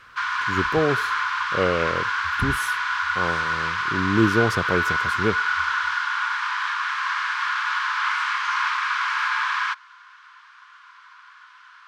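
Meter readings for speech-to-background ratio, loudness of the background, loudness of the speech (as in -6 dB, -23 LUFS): -2.5 dB, -23.5 LUFS, -26.0 LUFS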